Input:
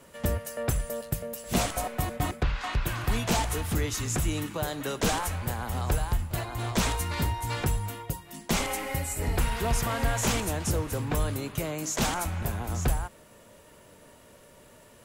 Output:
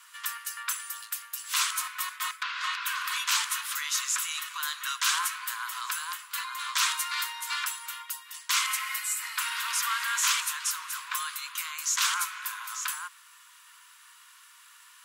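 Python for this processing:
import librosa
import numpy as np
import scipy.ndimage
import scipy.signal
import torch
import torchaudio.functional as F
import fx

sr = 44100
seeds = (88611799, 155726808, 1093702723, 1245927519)

y = scipy.signal.sosfilt(scipy.signal.cheby1(6, 3, 1000.0, 'highpass', fs=sr, output='sos'), x)
y = y * librosa.db_to_amplitude(6.5)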